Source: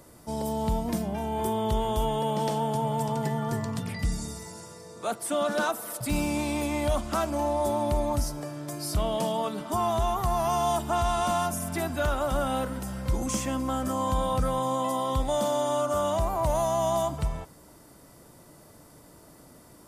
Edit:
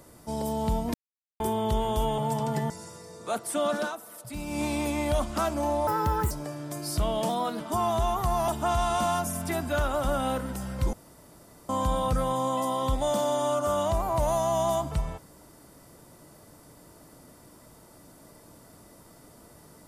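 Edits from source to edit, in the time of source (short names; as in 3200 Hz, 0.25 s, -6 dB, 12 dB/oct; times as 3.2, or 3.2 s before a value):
0.94–1.4 mute
2.18–2.87 cut
3.39–4.46 cut
5.51–6.39 dip -9 dB, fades 0.17 s
7.63–8.28 speed 148%
9.26–9.6 speed 109%
10.48–10.75 cut
13.2–13.96 room tone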